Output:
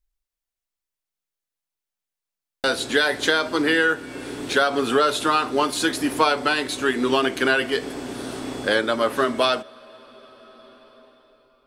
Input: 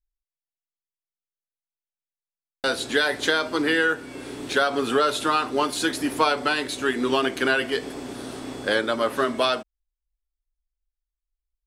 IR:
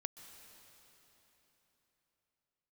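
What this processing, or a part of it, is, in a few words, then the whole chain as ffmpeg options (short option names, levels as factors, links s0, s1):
ducked reverb: -filter_complex "[0:a]asplit=3[s0][s1][s2];[1:a]atrim=start_sample=2205[s3];[s1][s3]afir=irnorm=-1:irlink=0[s4];[s2]apad=whole_len=514582[s5];[s4][s5]sidechaincompress=threshold=0.0141:ratio=3:attack=8.1:release=966,volume=1.19[s6];[s0][s6]amix=inputs=2:normalize=0,volume=1.12"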